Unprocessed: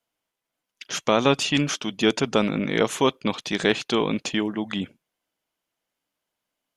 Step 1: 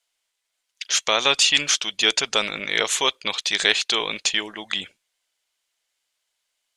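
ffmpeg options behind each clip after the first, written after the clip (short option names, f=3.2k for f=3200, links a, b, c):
-af "equalizer=f=125:t=o:w=1:g=-12,equalizer=f=250:t=o:w=1:g=-12,equalizer=f=2k:t=o:w=1:g=6,equalizer=f=4k:t=o:w=1:g=9,equalizer=f=8k:t=o:w=1:g=12,volume=-2dB"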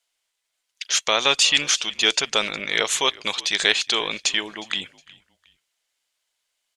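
-filter_complex "[0:a]asplit=3[a][b][c];[b]adelay=362,afreqshift=-65,volume=-22.5dB[d];[c]adelay=724,afreqshift=-130,volume=-32.4dB[e];[a][d][e]amix=inputs=3:normalize=0"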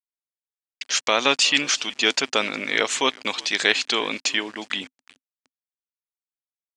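-af "aeval=exprs='val(0)*gte(abs(val(0)),0.01)':c=same,highpass=120,equalizer=f=170:t=q:w=4:g=-4,equalizer=f=260:t=q:w=4:g=10,equalizer=f=3.5k:t=q:w=4:g=-5,equalizer=f=6.4k:t=q:w=4:g=-4,lowpass=f=7.8k:w=0.5412,lowpass=f=7.8k:w=1.3066,volume=1dB"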